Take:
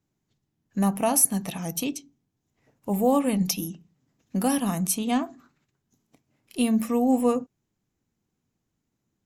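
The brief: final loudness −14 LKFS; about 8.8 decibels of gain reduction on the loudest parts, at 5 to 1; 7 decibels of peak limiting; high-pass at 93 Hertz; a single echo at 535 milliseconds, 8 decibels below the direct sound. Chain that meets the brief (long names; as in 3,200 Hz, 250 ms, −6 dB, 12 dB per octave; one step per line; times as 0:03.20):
high-pass filter 93 Hz
downward compressor 5 to 1, threshold −24 dBFS
brickwall limiter −20.5 dBFS
single-tap delay 535 ms −8 dB
level +17.5 dB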